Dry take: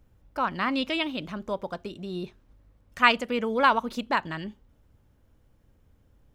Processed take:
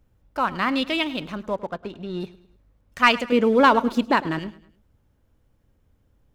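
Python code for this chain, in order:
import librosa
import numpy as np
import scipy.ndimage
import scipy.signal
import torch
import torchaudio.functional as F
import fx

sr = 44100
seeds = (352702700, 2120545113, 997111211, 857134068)

y = fx.lowpass(x, sr, hz=fx.line((1.48, 2200.0), (2.19, 3800.0)), slope=12, at=(1.48, 2.19), fade=0.02)
y = fx.peak_eq(y, sr, hz=320.0, db=9.5, octaves=1.3, at=(3.32, 4.39))
y = fx.leveller(y, sr, passes=1)
y = fx.echo_feedback(y, sr, ms=105, feedback_pct=42, wet_db=-18.5)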